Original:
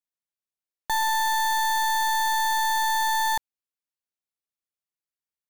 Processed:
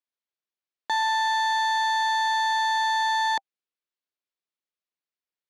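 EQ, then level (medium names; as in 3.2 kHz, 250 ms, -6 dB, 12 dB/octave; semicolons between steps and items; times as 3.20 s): Chebyshev band-pass 290–4100 Hz, order 2; band-stop 790 Hz, Q 16; +1.5 dB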